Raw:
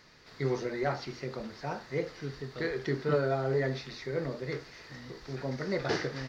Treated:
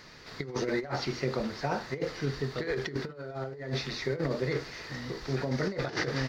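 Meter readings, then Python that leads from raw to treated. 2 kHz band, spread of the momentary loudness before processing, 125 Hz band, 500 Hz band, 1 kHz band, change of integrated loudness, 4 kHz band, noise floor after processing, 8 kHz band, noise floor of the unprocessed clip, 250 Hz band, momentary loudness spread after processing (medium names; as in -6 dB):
+2.0 dB, 11 LU, +1.5 dB, -1.0 dB, +0.5 dB, +0.5 dB, +5.0 dB, -47 dBFS, no reading, -53 dBFS, +2.0 dB, 7 LU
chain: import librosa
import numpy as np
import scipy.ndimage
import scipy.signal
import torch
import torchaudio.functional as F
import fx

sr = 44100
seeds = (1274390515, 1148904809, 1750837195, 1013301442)

y = fx.over_compress(x, sr, threshold_db=-35.0, ratio=-0.5)
y = y * 10.0 ** (4.0 / 20.0)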